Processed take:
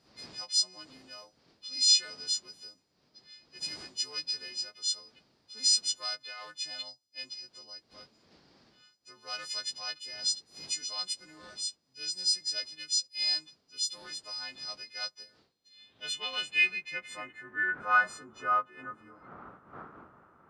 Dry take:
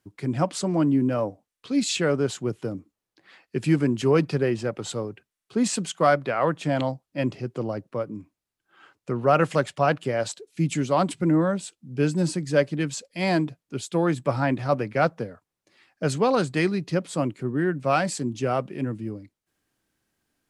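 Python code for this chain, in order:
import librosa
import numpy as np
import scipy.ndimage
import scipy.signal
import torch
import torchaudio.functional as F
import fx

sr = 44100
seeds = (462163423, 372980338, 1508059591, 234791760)

p1 = fx.freq_snap(x, sr, grid_st=3)
p2 = fx.dmg_wind(p1, sr, seeds[0], corner_hz=210.0, level_db=-27.0)
p3 = np.clip(p2, -10.0 ** (-19.0 / 20.0), 10.0 ** (-19.0 / 20.0))
p4 = p2 + F.gain(torch.from_numpy(p3), -8.5).numpy()
p5 = fx.filter_sweep_bandpass(p4, sr, from_hz=4800.0, to_hz=1300.0, start_s=15.31, end_s=18.08, q=6.1)
y = F.gain(torch.from_numpy(p5), 2.5).numpy()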